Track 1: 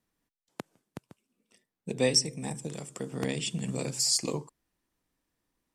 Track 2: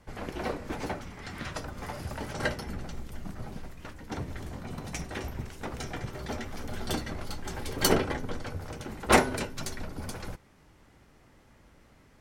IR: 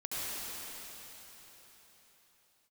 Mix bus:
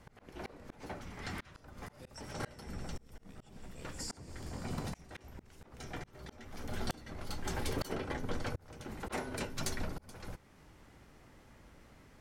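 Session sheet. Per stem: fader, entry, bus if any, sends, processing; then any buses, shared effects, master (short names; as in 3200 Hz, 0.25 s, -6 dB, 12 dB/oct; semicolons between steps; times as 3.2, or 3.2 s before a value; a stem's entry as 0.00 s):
-17.5 dB, 0.00 s, send -9.5 dB, dry
0.0 dB, 0.00 s, no send, dry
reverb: on, RT60 4.2 s, pre-delay 65 ms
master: auto swell 0.611 s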